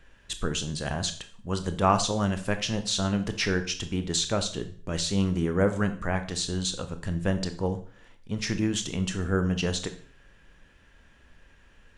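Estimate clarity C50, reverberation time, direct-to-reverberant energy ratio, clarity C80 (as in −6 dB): 12.5 dB, 0.45 s, 8.5 dB, 16.5 dB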